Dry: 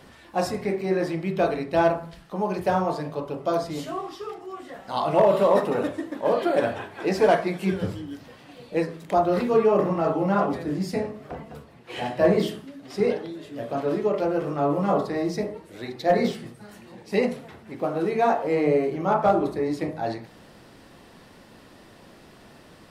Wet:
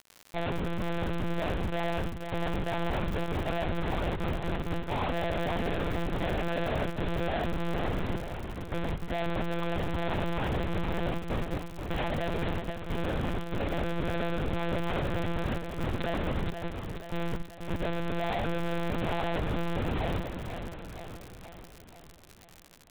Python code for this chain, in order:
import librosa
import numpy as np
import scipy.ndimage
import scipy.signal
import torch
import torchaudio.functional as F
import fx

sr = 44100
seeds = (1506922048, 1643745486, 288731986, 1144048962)

y = fx.schmitt(x, sr, flips_db=-33.0)
y = fx.echo_feedback(y, sr, ms=481, feedback_pct=57, wet_db=-7.5)
y = fx.lpc_monotone(y, sr, seeds[0], pitch_hz=170.0, order=8)
y = fx.dmg_crackle(y, sr, seeds[1], per_s=100.0, level_db=-30.0)
y = y * librosa.db_to_amplitude(-5.0)